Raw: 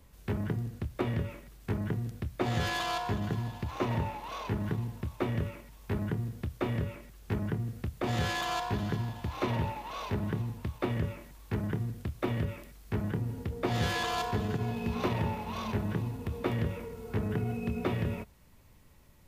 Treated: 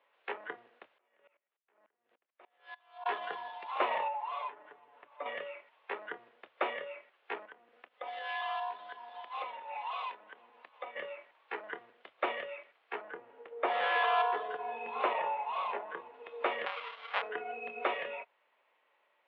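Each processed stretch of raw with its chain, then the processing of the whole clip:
0:00.98–0:03.06: output level in coarse steps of 23 dB + tremolo with a ramp in dB swelling 3.4 Hz, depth 26 dB
0:04.08–0:05.26: low-pass filter 2,200 Hz 6 dB per octave + comb filter 6.9 ms, depth 98% + downward compressor 2.5 to 1, threshold −40 dBFS
0:07.45–0:10.96: comb filter 4 ms, depth 37% + downward compressor 5 to 1, threshold −38 dBFS
0:13.01–0:16.14: high-pass filter 50 Hz + parametric band 12,000 Hz −12.5 dB 2.2 octaves
0:16.66–0:17.22: each half-wave held at its own peak + parametric band 370 Hz −11 dB 1.6 octaves
whole clip: Butterworth low-pass 3,200 Hz 36 dB per octave; noise reduction from a noise print of the clip's start 9 dB; high-pass filter 540 Hz 24 dB per octave; level +6 dB

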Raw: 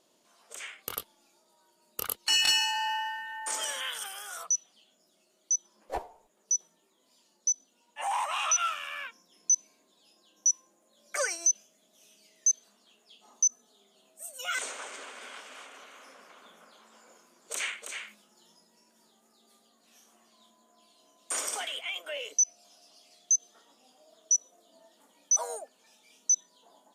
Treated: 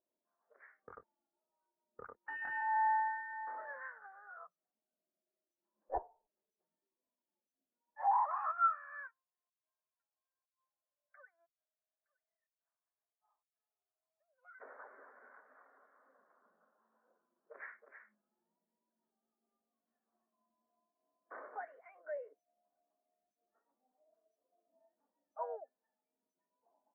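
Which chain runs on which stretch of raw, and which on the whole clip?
0:09.08–0:14.60: high-pass filter 870 Hz + downward compressor 8 to 1, threshold −42 dBFS + single-tap delay 915 ms −19 dB
whole clip: elliptic low-pass filter 1,800 Hz, stop band 50 dB; every bin expanded away from the loudest bin 1.5 to 1; level +1 dB

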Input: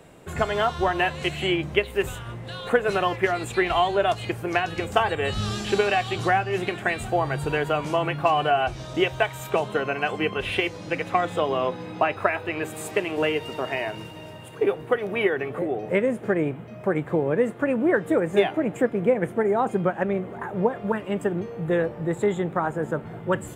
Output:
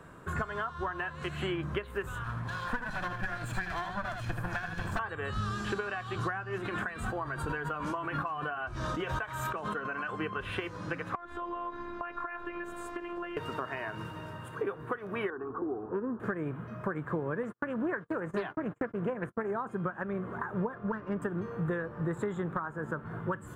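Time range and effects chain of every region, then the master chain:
0:02.24–0:04.99: lower of the sound and its delayed copy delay 1.2 ms + single-tap delay 78 ms −7.5 dB + dynamic equaliser 970 Hz, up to −6 dB, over −37 dBFS, Q 1.5
0:06.58–0:10.09: flanger 1.4 Hz, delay 3 ms, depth 1.4 ms, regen −48% + background raised ahead of every attack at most 39 dB per second
0:11.15–0:13.37: low-pass filter 3,600 Hz 6 dB per octave + phases set to zero 347 Hz + downward compressor 8 to 1, threshold −30 dBFS
0:15.30–0:16.20: low-pass filter 1,200 Hz + phaser with its sweep stopped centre 570 Hz, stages 6
0:17.43–0:19.51: noise gate −33 dBFS, range −45 dB + highs frequency-modulated by the lows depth 0.18 ms
0:20.74–0:21.22: high-frequency loss of the air 420 metres + windowed peak hold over 3 samples
whole clip: flat-topped bell 1,300 Hz +13 dB 1 octave; downward compressor 6 to 1, threshold −26 dBFS; low-shelf EQ 380 Hz +8.5 dB; level −8 dB

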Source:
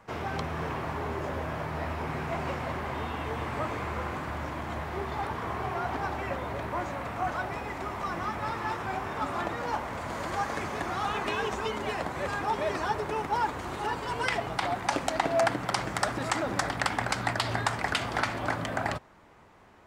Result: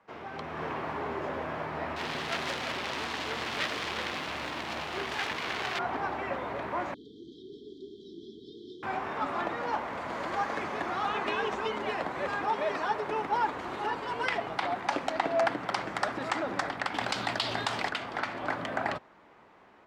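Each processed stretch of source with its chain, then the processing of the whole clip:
0:01.96–0:05.79: phase distortion by the signal itself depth 0.54 ms + parametric band 12,000 Hz +11 dB 2.7 octaves
0:06.94–0:08.83: linear-phase brick-wall band-stop 450–3,100 Hz + three-way crossover with the lows and the highs turned down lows −14 dB, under 290 Hz, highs −23 dB, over 4,500 Hz
0:12.49–0:13.07: high-pass filter 140 Hz 6 dB per octave + notch filter 350 Hz, Q 7.3
0:16.94–0:17.89: high shelf with overshoot 2,500 Hz +6.5 dB, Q 1.5 + envelope flattener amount 50%
whole clip: automatic gain control gain up to 8 dB; three-way crossover with the lows and the highs turned down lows −13 dB, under 180 Hz, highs −13 dB, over 4,900 Hz; level −8 dB

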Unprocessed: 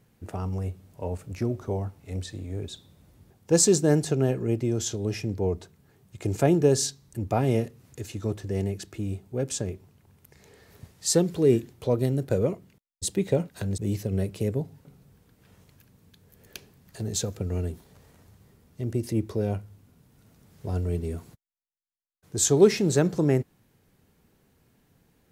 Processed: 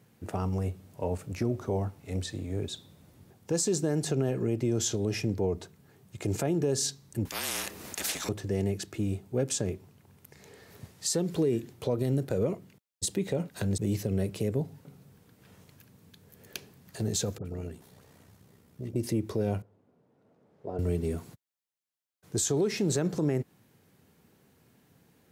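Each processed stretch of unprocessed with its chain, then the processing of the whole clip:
0:07.25–0:08.29: frequency shifter −42 Hz + every bin compressed towards the loudest bin 10 to 1
0:17.38–0:18.96: downward compressor 2 to 1, threshold −36 dBFS + all-pass dispersion highs, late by 73 ms, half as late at 1,300 Hz + amplitude modulation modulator 63 Hz, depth 35%
0:19.62–0:20.79: one scale factor per block 7 bits + resonant band-pass 530 Hz, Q 1.3
whole clip: high-pass filter 96 Hz 12 dB per octave; downward compressor, threshold −23 dBFS; brickwall limiter −21 dBFS; level +2 dB

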